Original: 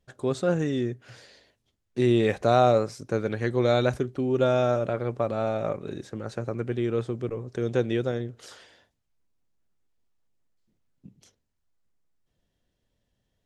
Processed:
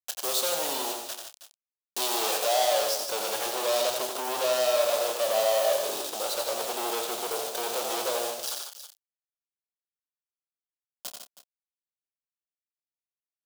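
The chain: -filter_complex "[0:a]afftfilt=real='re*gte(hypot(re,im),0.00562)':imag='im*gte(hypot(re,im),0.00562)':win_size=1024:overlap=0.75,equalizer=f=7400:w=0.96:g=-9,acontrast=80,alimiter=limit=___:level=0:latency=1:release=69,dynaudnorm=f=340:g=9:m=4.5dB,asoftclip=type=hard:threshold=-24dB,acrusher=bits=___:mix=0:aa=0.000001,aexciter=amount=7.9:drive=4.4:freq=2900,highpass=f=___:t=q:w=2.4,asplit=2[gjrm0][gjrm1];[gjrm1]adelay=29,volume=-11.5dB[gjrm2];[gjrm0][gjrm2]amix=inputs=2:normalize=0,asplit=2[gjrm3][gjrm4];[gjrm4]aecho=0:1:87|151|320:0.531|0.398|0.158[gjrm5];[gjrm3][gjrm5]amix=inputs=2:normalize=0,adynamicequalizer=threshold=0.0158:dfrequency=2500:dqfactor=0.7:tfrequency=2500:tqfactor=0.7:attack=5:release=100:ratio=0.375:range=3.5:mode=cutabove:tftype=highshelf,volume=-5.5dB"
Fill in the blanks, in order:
-11.5dB, 5, 660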